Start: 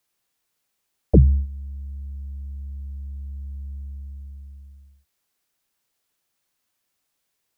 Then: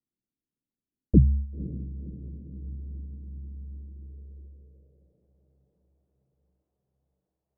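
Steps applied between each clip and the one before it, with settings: echo that smears into a reverb 527 ms, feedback 58%, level -15 dB; low-pass sweep 260 Hz -> 670 Hz, 3.59–5.36 s; trim -6 dB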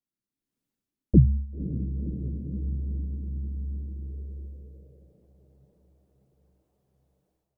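level rider gain up to 13 dB; flange 1.9 Hz, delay 2.4 ms, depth 8.1 ms, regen +67%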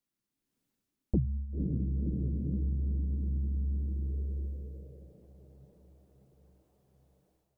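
compression 4:1, threshold -32 dBFS, peak gain reduction 18 dB; trim +3.5 dB

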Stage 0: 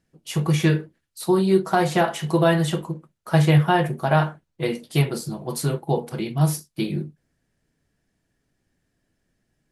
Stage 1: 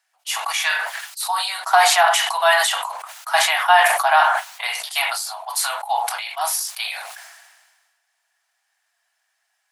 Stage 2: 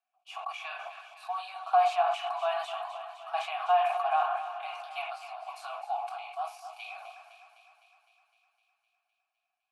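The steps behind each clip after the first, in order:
steep high-pass 700 Hz 72 dB/octave; decay stretcher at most 39 dB/s; trim +8 dB
vowel filter a; thinning echo 255 ms, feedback 68%, high-pass 480 Hz, level -11 dB; dynamic bell 490 Hz, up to -6 dB, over -36 dBFS, Q 1.5; trim -4 dB

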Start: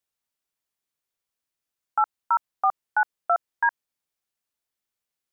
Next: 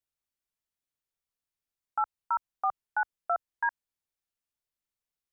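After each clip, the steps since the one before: bass shelf 110 Hz +11 dB; trim -7 dB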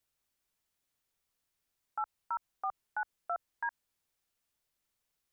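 in parallel at +0.5 dB: compressor with a negative ratio -33 dBFS, ratio -1; on the sum: peak limiter -24.5 dBFS, peak gain reduction 9.5 dB; trim -2.5 dB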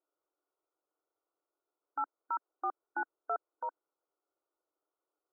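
in parallel at -9 dB: sample-and-hold 39×; on the sum: brick-wall FIR band-pass 290–1500 Hz; trim +1 dB

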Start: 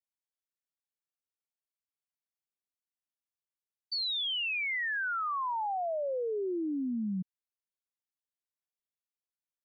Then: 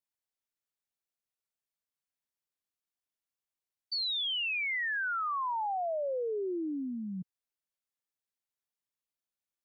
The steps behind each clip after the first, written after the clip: dynamic bell 210 Hz, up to -5 dB, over -46 dBFS, Q 1.8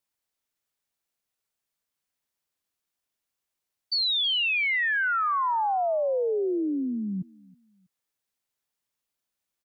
feedback delay 322 ms, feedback 31%, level -23.5 dB; trim +7.5 dB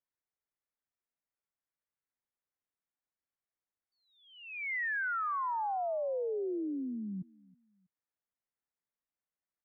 steep low-pass 2.2 kHz 48 dB/octave; trim -8.5 dB

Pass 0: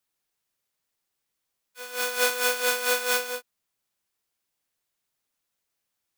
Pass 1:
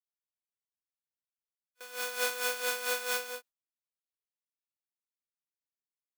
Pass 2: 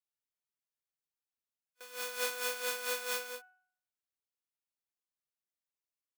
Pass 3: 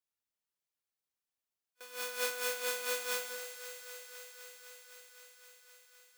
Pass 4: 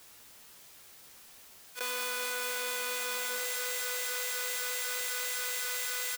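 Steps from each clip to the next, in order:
gate with hold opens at -28 dBFS; bass shelf 170 Hz -8 dB; trim -7.5 dB
de-hum 369.9 Hz, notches 8; trim -3 dB
thinning echo 257 ms, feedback 83%, high-pass 210 Hz, level -11 dB
doubling 13 ms -8 dB; level flattener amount 100%; trim -3 dB

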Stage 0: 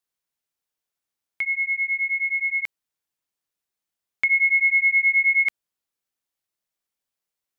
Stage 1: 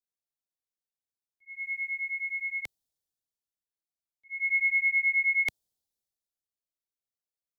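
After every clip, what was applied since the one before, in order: slow attack 279 ms; high-order bell 1.7 kHz -12 dB; three bands expanded up and down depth 40%; trim +4 dB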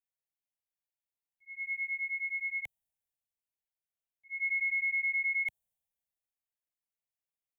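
peak limiter -24.5 dBFS, peak gain reduction 8.5 dB; static phaser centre 1.3 kHz, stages 6; trim -2 dB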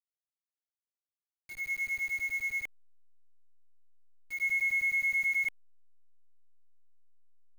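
send-on-delta sampling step -45 dBFS; trim +2 dB

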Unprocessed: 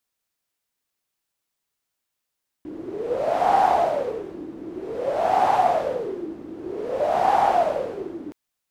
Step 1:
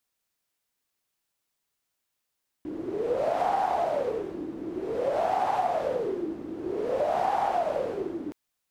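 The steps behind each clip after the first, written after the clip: compression 6:1, threshold -23 dBFS, peak gain reduction 9.5 dB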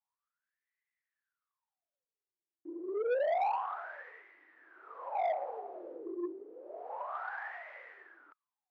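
wah-wah 0.29 Hz 330–2000 Hz, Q 16; overdrive pedal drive 19 dB, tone 2.4 kHz, clips at -18.5 dBFS; bass shelf 310 Hz -11 dB; trim -2 dB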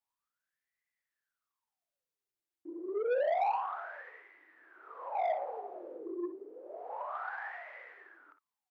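early reflections 51 ms -15 dB, 61 ms -12 dB

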